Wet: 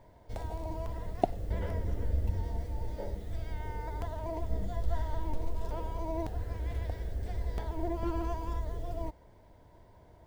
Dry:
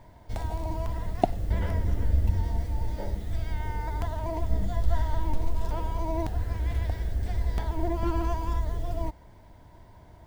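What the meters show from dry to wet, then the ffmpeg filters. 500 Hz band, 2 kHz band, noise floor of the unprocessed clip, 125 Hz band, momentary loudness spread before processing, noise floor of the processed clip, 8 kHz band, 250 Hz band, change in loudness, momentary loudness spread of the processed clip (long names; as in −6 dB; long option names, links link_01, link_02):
−3.0 dB, −7.0 dB, −52 dBFS, −7.0 dB, 6 LU, −58 dBFS, can't be measured, −5.0 dB, −6.0 dB, 7 LU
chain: -af "equalizer=frequency=480:width_type=o:width=0.8:gain=7.5,volume=-7dB"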